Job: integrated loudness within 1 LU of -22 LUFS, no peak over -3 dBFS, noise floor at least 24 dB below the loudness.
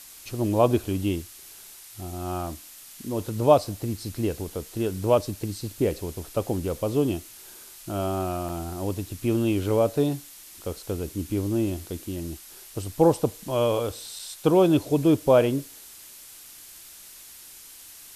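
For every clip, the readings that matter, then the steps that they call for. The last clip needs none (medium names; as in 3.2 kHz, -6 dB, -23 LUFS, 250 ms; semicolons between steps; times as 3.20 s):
dropouts 2; longest dropout 3.4 ms; noise floor -46 dBFS; noise floor target -50 dBFS; loudness -26.0 LUFS; peak level -4.0 dBFS; loudness target -22.0 LUFS
-> interpolate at 8.49/14.19 s, 3.4 ms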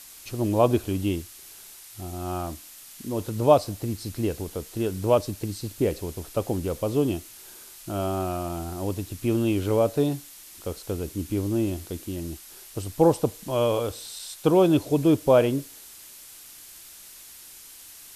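dropouts 0; noise floor -46 dBFS; noise floor target -50 dBFS
-> noise reduction 6 dB, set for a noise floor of -46 dBFS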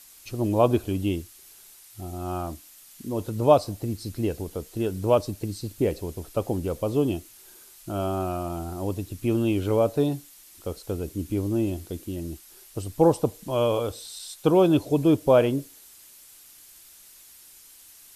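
noise floor -51 dBFS; loudness -25.5 LUFS; peak level -4.5 dBFS; loudness target -22.0 LUFS
-> trim +3.5 dB; peak limiter -3 dBFS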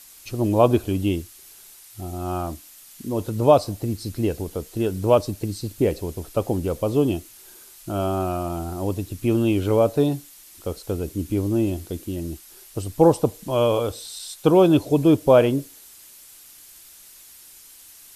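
loudness -22.5 LUFS; peak level -3.0 dBFS; noise floor -47 dBFS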